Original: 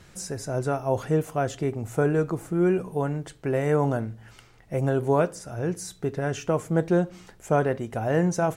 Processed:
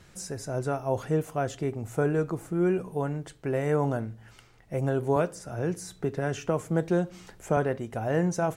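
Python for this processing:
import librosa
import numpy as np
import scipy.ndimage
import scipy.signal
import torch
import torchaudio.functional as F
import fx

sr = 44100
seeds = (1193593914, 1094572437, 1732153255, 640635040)

y = fx.band_squash(x, sr, depth_pct=40, at=(5.16, 7.57))
y = F.gain(torch.from_numpy(y), -3.0).numpy()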